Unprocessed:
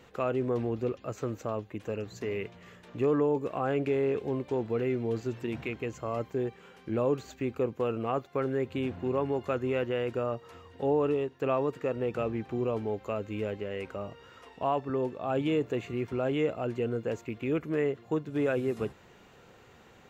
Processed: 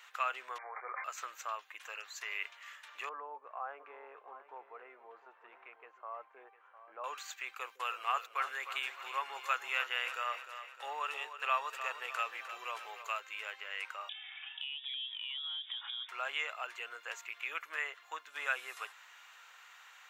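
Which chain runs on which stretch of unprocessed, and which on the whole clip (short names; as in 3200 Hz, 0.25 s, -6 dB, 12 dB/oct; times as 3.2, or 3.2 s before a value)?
0.58–1.04 dynamic EQ 750 Hz, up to +6 dB, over -44 dBFS, Q 1.1 + brick-wall FIR band-pass 360–2400 Hz + sustainer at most 100 dB/s
3.09–7.04 Butterworth band-pass 370 Hz, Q 0.52 + echo 0.705 s -13.5 dB
7.6–13.2 high shelf 3800 Hz +6.5 dB + gate -49 dBFS, range -16 dB + split-band echo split 420 Hz, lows 0.152 s, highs 0.304 s, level -11 dB
14.09–16.09 inverted band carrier 3600 Hz + compressor 16:1, threshold -42 dBFS
whole clip: HPF 1100 Hz 24 dB/oct; bell 4700 Hz -3 dB 0.35 oct; gain +5 dB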